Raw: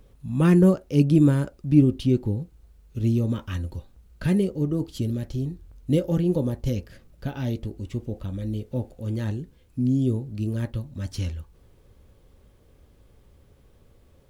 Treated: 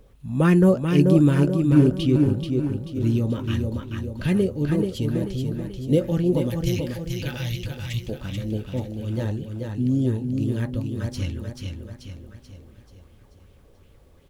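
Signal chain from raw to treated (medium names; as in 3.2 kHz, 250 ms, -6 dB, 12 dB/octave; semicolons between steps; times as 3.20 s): 6.50–8.09 s: FFT filter 160 Hz 0 dB, 290 Hz -22 dB, 2.4 kHz +9 dB; on a send: feedback delay 435 ms, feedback 50%, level -5 dB; on the sum: sweeping bell 2.7 Hz 460–3200 Hz +7 dB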